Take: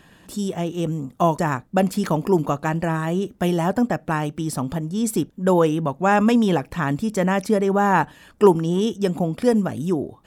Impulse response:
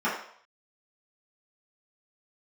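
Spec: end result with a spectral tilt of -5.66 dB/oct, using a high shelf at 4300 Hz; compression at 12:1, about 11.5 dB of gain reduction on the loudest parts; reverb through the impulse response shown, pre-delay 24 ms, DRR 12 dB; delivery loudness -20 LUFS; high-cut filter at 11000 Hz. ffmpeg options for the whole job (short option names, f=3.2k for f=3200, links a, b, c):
-filter_complex "[0:a]lowpass=11k,highshelf=f=4.3k:g=7,acompressor=threshold=-19dB:ratio=12,asplit=2[a][b];[1:a]atrim=start_sample=2205,adelay=24[c];[b][c]afir=irnorm=-1:irlink=0,volume=-25.5dB[d];[a][d]amix=inputs=2:normalize=0,volume=5dB"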